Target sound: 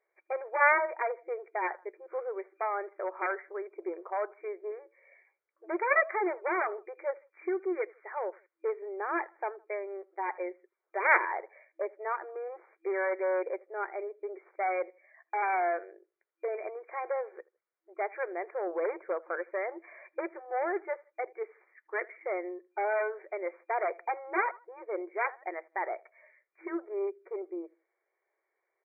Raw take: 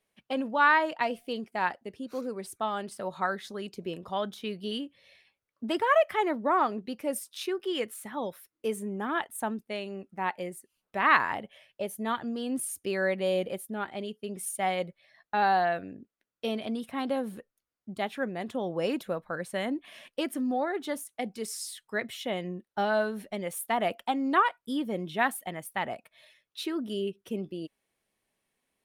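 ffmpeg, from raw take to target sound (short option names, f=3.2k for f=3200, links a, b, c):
-filter_complex "[0:a]asplit=2[a][b];[b]adelay=80,lowpass=f=1.9k:p=1,volume=-24dB,asplit=2[c][d];[d]adelay=80,lowpass=f=1.9k:p=1,volume=0.32[e];[a][c][e]amix=inputs=3:normalize=0,aeval=exprs='0.447*(cos(1*acos(clip(val(0)/0.447,-1,1)))-cos(1*PI/2))+0.141*(cos(7*acos(clip(val(0)/0.447,-1,1)))-cos(7*PI/2))+0.02*(cos(8*acos(clip(val(0)/0.447,-1,1)))-cos(8*PI/2))':c=same,afftfilt=real='re*between(b*sr/4096,330,2400)':imag='im*between(b*sr/4096,330,2400)':win_size=4096:overlap=0.75"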